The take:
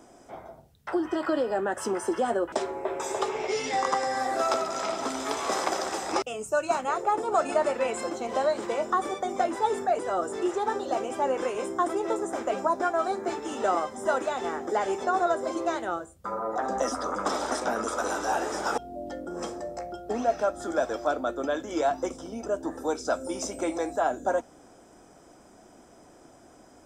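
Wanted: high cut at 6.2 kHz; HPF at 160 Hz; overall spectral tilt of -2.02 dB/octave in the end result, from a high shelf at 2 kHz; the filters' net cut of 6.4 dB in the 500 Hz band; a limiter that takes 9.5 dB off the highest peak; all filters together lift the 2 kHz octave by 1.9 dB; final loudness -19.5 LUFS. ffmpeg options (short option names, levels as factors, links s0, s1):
-af "highpass=160,lowpass=6200,equalizer=f=500:t=o:g=-8.5,highshelf=f=2000:g=-8,equalizer=f=2000:t=o:g=8,volume=5.31,alimiter=limit=0.398:level=0:latency=1"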